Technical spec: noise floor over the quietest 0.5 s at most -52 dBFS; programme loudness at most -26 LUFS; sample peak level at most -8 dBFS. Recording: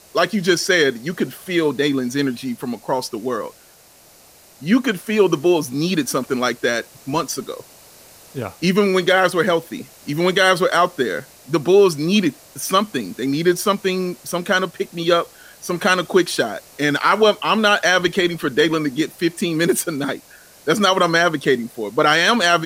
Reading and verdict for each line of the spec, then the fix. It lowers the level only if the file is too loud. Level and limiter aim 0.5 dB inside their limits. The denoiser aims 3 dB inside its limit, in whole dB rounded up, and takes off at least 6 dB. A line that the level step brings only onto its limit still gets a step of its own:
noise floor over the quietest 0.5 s -49 dBFS: fail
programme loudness -18.5 LUFS: fail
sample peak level -3.5 dBFS: fail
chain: trim -8 dB

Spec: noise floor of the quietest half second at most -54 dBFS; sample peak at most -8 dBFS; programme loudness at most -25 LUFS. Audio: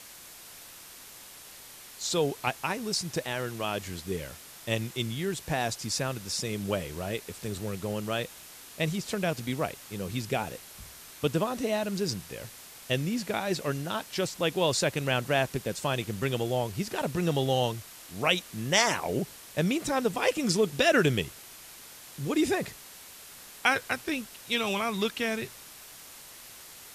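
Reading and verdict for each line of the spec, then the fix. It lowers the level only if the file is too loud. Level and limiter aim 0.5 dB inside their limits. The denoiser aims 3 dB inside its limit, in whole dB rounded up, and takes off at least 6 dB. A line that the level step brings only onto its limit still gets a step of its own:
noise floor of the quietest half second -48 dBFS: fail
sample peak -8.5 dBFS: pass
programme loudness -29.5 LUFS: pass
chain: noise reduction 9 dB, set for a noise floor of -48 dBFS

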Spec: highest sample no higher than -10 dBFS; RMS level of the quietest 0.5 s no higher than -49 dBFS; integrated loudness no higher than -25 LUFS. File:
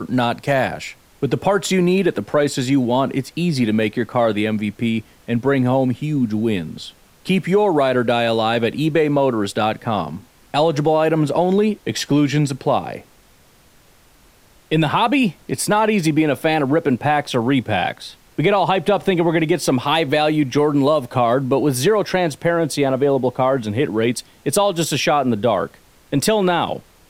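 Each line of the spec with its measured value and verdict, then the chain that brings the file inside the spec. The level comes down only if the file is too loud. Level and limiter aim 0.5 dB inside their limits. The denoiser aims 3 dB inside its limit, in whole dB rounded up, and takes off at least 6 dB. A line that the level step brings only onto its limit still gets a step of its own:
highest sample -5.0 dBFS: fail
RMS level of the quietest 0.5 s -51 dBFS: pass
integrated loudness -18.5 LUFS: fail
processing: trim -7 dB

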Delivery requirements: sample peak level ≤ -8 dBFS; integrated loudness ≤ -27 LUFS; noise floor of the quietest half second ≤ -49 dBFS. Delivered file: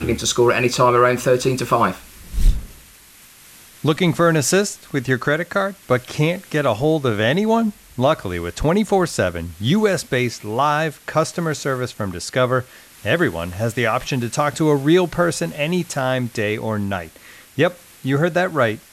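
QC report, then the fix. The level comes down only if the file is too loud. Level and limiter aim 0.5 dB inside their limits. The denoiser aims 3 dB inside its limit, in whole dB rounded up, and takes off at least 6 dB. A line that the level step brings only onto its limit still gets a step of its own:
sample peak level -4.0 dBFS: fail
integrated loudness -19.5 LUFS: fail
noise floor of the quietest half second -46 dBFS: fail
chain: trim -8 dB

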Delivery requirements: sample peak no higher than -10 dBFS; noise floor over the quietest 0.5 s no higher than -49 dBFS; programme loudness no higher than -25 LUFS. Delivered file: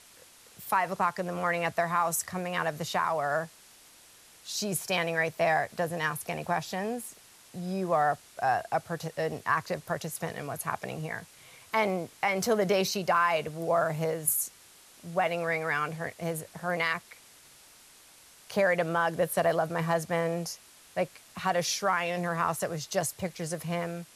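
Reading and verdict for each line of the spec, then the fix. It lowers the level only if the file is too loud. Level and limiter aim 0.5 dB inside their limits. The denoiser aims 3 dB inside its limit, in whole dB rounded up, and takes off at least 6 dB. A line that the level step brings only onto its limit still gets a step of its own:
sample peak -12.5 dBFS: pass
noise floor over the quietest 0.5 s -56 dBFS: pass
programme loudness -30.0 LUFS: pass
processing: none needed

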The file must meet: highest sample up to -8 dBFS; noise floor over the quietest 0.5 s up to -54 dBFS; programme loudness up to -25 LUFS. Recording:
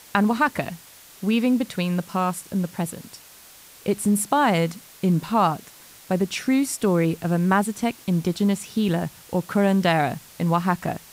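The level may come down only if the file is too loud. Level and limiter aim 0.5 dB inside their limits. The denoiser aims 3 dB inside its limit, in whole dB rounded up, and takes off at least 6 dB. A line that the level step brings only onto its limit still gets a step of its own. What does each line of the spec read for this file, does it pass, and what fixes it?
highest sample -5.0 dBFS: fail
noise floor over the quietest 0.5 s -48 dBFS: fail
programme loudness -23.0 LUFS: fail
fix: noise reduction 7 dB, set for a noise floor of -48 dBFS; trim -2.5 dB; peak limiter -8.5 dBFS

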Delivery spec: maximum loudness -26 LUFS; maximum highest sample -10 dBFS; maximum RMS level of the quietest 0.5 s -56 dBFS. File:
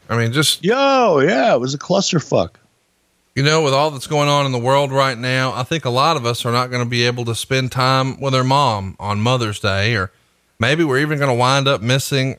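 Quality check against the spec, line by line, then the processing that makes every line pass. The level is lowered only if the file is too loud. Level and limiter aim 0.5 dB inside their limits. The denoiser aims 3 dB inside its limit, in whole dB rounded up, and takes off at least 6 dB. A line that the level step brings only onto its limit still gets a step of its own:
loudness -16.5 LUFS: fail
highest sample -3.0 dBFS: fail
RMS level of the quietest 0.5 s -62 dBFS: pass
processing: trim -10 dB

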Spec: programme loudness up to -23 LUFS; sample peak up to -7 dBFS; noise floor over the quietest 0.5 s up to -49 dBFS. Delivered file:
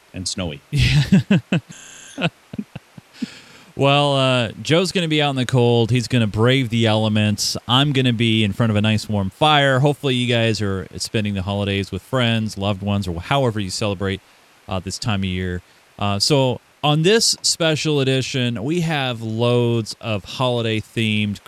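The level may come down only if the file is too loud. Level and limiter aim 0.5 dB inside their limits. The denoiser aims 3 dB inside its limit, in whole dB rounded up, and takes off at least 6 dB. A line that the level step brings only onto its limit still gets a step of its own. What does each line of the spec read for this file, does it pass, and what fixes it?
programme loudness -19.0 LUFS: fail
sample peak -3.5 dBFS: fail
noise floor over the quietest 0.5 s -51 dBFS: pass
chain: trim -4.5 dB

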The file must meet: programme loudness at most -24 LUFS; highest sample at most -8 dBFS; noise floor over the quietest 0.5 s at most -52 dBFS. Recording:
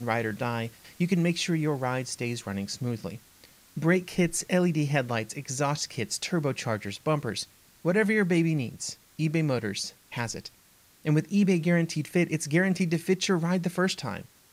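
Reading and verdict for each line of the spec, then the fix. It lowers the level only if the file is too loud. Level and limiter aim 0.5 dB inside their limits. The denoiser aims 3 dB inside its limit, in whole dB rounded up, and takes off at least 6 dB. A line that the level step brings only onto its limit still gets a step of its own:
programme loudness -28.0 LUFS: pass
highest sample -11.0 dBFS: pass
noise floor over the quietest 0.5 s -59 dBFS: pass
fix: none needed

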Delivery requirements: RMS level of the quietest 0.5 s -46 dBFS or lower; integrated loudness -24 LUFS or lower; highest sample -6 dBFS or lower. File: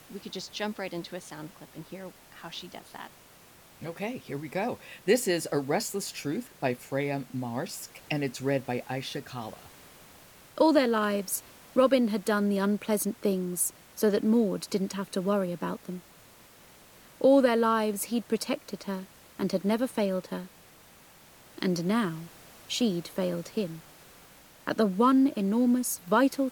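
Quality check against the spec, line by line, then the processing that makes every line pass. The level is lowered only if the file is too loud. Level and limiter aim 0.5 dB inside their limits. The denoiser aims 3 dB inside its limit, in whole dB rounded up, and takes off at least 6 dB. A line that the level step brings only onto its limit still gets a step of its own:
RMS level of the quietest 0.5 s -55 dBFS: pass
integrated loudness -28.5 LUFS: pass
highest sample -10.5 dBFS: pass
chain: none needed

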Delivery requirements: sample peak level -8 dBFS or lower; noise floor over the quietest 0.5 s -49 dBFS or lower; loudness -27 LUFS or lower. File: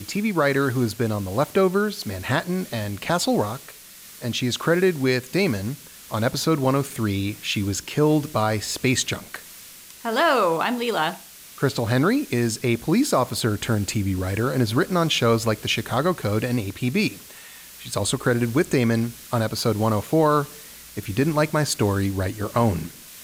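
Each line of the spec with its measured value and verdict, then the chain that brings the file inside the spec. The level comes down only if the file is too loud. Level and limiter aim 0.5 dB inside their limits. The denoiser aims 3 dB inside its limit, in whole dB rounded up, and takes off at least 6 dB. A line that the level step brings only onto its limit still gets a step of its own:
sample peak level -8.5 dBFS: pass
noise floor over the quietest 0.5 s -44 dBFS: fail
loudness -23.0 LUFS: fail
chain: noise reduction 6 dB, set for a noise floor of -44 dBFS; trim -4.5 dB

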